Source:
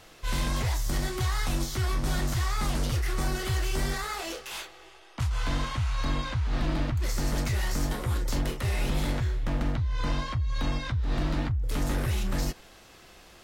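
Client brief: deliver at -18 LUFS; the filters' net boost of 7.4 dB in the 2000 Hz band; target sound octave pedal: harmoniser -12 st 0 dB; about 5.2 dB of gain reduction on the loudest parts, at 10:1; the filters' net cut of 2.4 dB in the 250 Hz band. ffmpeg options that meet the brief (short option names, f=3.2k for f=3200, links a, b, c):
-filter_complex "[0:a]equalizer=f=250:t=o:g=-3.5,equalizer=f=2k:t=o:g=9,acompressor=threshold=-28dB:ratio=10,asplit=2[a][b];[b]asetrate=22050,aresample=44100,atempo=2,volume=0dB[c];[a][c]amix=inputs=2:normalize=0,volume=13.5dB"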